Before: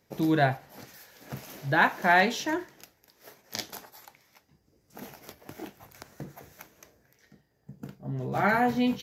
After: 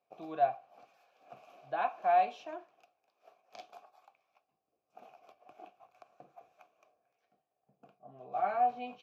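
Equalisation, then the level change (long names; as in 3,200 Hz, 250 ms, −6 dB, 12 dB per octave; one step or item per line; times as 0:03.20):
formant filter a
0.0 dB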